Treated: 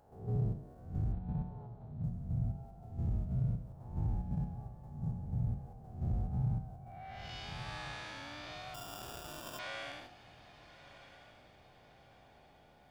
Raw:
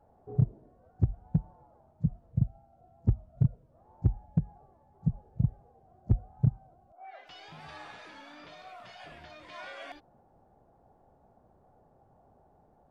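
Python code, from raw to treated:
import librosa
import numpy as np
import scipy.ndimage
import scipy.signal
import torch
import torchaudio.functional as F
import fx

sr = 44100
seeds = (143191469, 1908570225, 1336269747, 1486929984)

p1 = fx.spec_blur(x, sr, span_ms=226.0)
p2 = fx.level_steps(p1, sr, step_db=20)
p3 = p1 + F.gain(torch.from_numpy(p2), 0.5).numpy()
p4 = fx.ellip_lowpass(p3, sr, hz=4200.0, order=4, stop_db=40, at=(1.12, 2.04))
p5 = p4 + fx.echo_diffused(p4, sr, ms=1286, feedback_pct=41, wet_db=-14.0, dry=0)
p6 = fx.sample_hold(p5, sr, seeds[0], rate_hz=2100.0, jitter_pct=0, at=(8.74, 9.59))
p7 = fx.high_shelf(p6, sr, hz=2300.0, db=9.0)
y = F.gain(torch.from_numpy(p7), -1.0).numpy()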